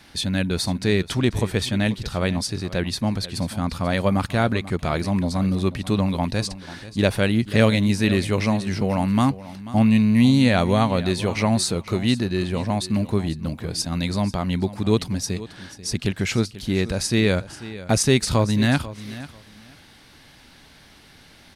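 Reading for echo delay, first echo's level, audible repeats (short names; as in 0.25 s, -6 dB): 0.489 s, -16.0 dB, 2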